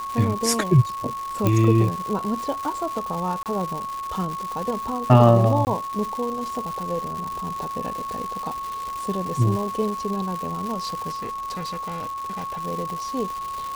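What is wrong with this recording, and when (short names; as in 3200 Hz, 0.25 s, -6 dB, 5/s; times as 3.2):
crackle 360/s -28 dBFS
tone 1100 Hz -28 dBFS
1.47 pop -7 dBFS
3.43–3.46 gap 28 ms
5.65–5.67 gap 19 ms
11.14–12.61 clipped -26.5 dBFS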